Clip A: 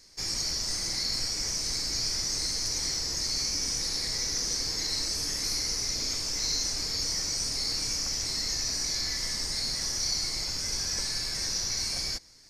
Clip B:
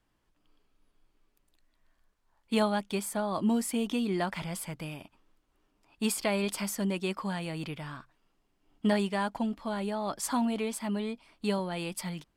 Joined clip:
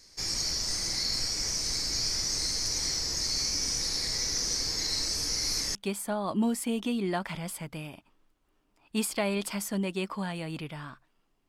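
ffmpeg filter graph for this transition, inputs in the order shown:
-filter_complex "[0:a]apad=whole_dur=11.48,atrim=end=11.48,asplit=2[a][b];[a]atrim=end=5.292[c];[b]atrim=start=5.288:end=5.752,asetpts=PTS-STARTPTS,areverse[d];[1:a]atrim=start=2.818:end=8.55[e];[c][d]acrossfade=d=0.004:c1=hsin:c2=hsin[f];[f][e]acrossfade=d=0.004:c1=hsin:c2=hsin"

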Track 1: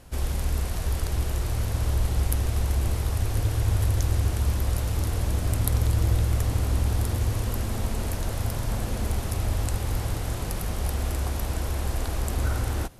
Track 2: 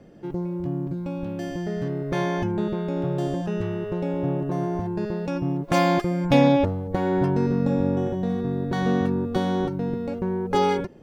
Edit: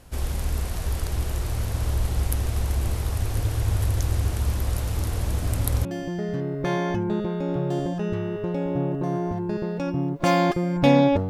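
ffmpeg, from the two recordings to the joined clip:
-filter_complex "[1:a]asplit=2[a][b];[0:a]apad=whole_dur=11.29,atrim=end=11.29,atrim=end=5.852[c];[b]atrim=start=1.328:end=6.77[d];[a]atrim=start=0.83:end=1.33,asetpts=PTS-STARTPTS,volume=-10.5dB,afade=t=in:d=0.004:c=hsin,afade=t=out:st=0.496:d=0.004:c=hsin,adelay=5350[e];[c][d]acrossfade=d=0.004:c1=hsin:c2=hsin[f];[f][e]amix=inputs=2:normalize=0"

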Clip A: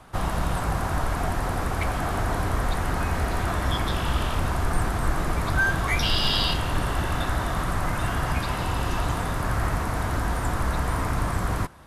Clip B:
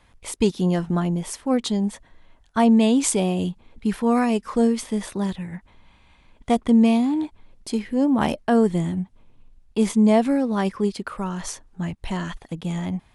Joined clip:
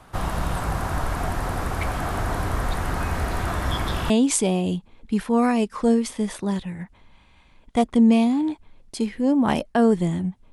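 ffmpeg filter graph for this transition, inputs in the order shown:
-filter_complex "[0:a]apad=whole_dur=10.52,atrim=end=10.52,atrim=end=4.102[a];[1:a]atrim=start=2.828:end=9.25[b];[a][b]acrossfade=d=0.004:c1=hsin:c2=hsin"

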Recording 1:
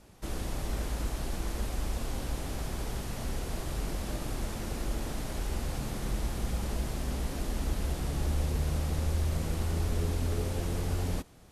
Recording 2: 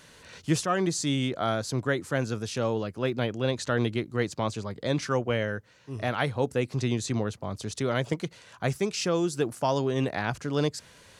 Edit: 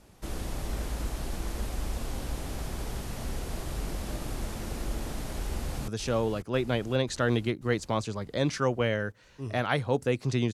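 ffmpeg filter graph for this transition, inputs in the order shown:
-filter_complex "[0:a]apad=whole_dur=10.53,atrim=end=10.53,atrim=end=5.882[a];[1:a]atrim=start=2.368:end=7.02[b];[a][b]acrossfade=d=0.004:c1=hsin:c2=hsin,asplit=2[c][d];[d]afade=t=in:st=5.45:d=0.01,afade=t=out:st=5.88:d=0.01,aecho=0:1:540|1080|1620|2160|2700|3240|3780|4320|4860:0.334965|0.217728|0.141523|0.0919899|0.0597934|0.0388657|0.0252627|0.0164208|0.0106735[e];[c][e]amix=inputs=2:normalize=0"

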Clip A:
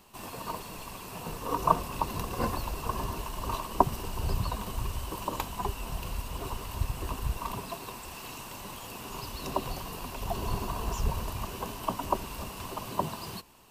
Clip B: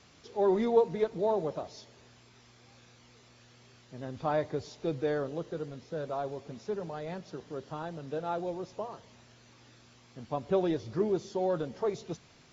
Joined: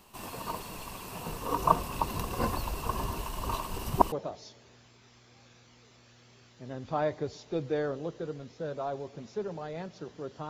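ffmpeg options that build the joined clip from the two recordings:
-filter_complex "[0:a]apad=whole_dur=10.49,atrim=end=10.49,asplit=2[a][b];[a]atrim=end=3.702[c];[b]atrim=start=3.698:end=4.122,asetpts=PTS-STARTPTS,areverse[d];[1:a]atrim=start=1.438:end=7.81[e];[c][d]acrossfade=d=0.004:c1=hsin:c2=hsin[f];[f][e]acrossfade=d=0.004:c1=hsin:c2=hsin"

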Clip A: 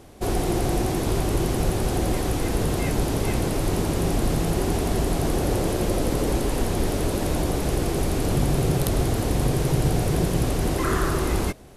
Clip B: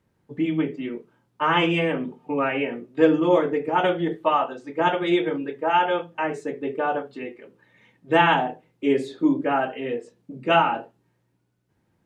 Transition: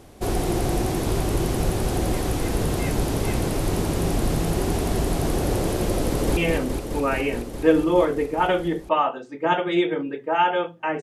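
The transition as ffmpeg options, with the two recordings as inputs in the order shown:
-filter_complex "[0:a]apad=whole_dur=11.02,atrim=end=11.02,atrim=end=6.372[a];[1:a]atrim=start=1.718:end=6.37[b];[a][b]acrossfade=d=0.004:c1=hsin:c2=hsin,asplit=2[c][d];[d]afade=t=in:st=6.06:d=0.01,afade=t=out:st=6.37:d=0.01,aecho=0:1:210|420|630|840|1050|1260|1470|1680|1890|2100|2310|2520:0.530884|0.451252|0.383564|0.326029|0.277125|0.235556|0.200223|0.170189|0.144661|0.122962|0.104518|0.0888399[e];[c][e]amix=inputs=2:normalize=0"

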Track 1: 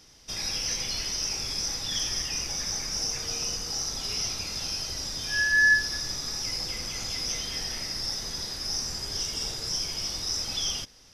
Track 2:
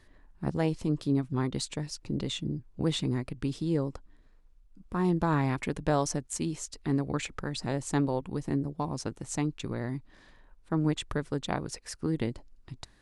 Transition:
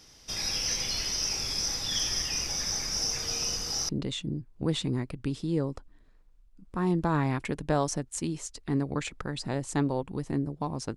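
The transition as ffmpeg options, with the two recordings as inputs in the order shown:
-filter_complex "[0:a]apad=whole_dur=10.96,atrim=end=10.96,atrim=end=3.892[a];[1:a]atrim=start=2.068:end=9.14[b];[a][b]acrossfade=d=0.004:c1=hsin:c2=hsin"

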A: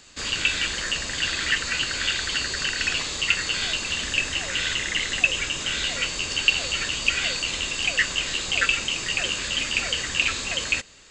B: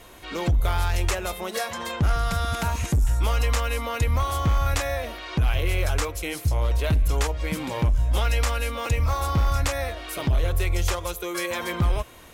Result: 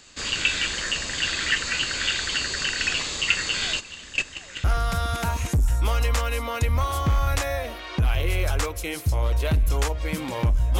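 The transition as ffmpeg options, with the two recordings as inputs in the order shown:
-filter_complex "[0:a]asplit=3[a][b][c];[a]afade=t=out:st=3.79:d=0.02[d];[b]agate=range=-13dB:threshold=-24dB:ratio=16:release=100:detection=peak,afade=t=in:st=3.79:d=0.02,afade=t=out:st=4.64:d=0.02[e];[c]afade=t=in:st=4.64:d=0.02[f];[d][e][f]amix=inputs=3:normalize=0,apad=whole_dur=10.79,atrim=end=10.79,atrim=end=4.642[g];[1:a]atrim=start=2.028:end=8.18[h];[g][h]acrossfade=d=0.004:c1=hsin:c2=hsin"

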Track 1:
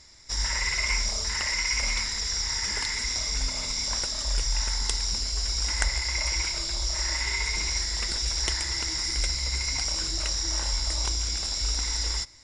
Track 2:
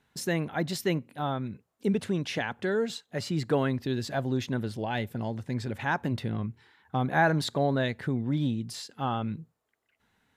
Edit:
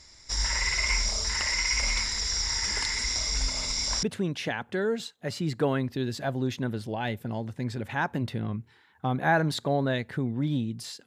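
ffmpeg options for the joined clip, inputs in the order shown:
-filter_complex "[0:a]apad=whole_dur=11.06,atrim=end=11.06,atrim=end=4.032[a];[1:a]atrim=start=1.928:end=8.96[b];[a][b]acrossfade=d=0.004:c1=hsin:c2=hsin"

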